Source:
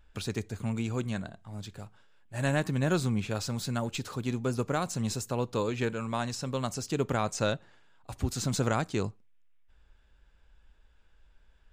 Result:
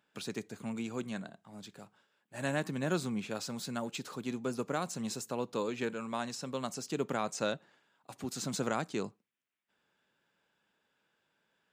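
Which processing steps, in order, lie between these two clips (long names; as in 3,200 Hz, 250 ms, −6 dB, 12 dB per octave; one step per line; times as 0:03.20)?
high-pass filter 160 Hz 24 dB per octave
level −4 dB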